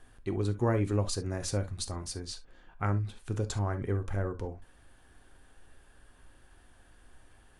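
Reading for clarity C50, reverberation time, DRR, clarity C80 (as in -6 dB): 14.5 dB, not exponential, 8.0 dB, 60.0 dB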